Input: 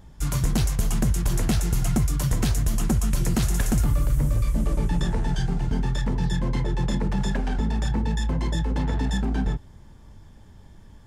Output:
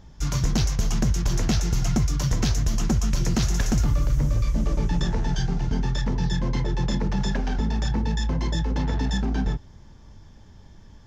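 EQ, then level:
high shelf with overshoot 7,400 Hz −8 dB, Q 3
0.0 dB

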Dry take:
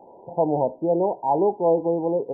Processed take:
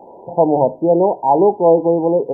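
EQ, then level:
mains-hum notches 50/100/150 Hz
+8.0 dB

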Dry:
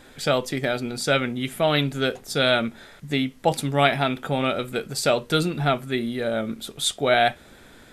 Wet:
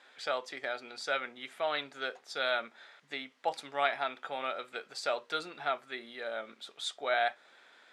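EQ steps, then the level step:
dynamic equaliser 2,900 Hz, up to −7 dB, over −39 dBFS, Q 1.7
band-pass filter 760–4,500 Hz
−6.5 dB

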